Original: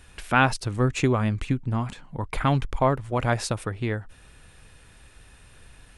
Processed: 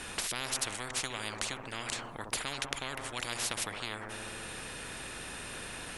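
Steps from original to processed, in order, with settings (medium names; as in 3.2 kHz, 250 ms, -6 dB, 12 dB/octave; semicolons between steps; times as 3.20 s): feedback echo behind a low-pass 65 ms, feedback 66%, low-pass 960 Hz, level -12.5 dB; spectrum-flattening compressor 10:1; trim -4.5 dB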